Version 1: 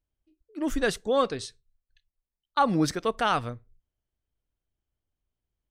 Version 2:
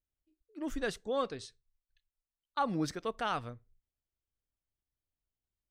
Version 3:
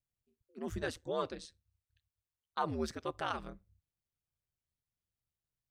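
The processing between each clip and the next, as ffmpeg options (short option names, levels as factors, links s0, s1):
-af "equalizer=f=11000:w=1.1:g=-3.5,volume=0.355"
-af "aeval=exprs='val(0)*sin(2*PI*79*n/s)':c=same"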